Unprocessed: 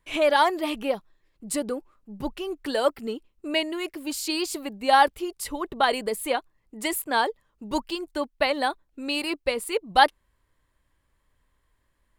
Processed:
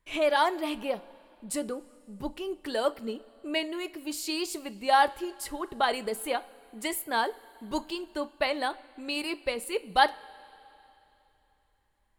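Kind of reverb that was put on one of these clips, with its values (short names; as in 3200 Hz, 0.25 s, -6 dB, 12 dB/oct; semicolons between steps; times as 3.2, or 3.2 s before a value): two-slope reverb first 0.29 s, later 3.1 s, from -18 dB, DRR 12.5 dB; gain -4.5 dB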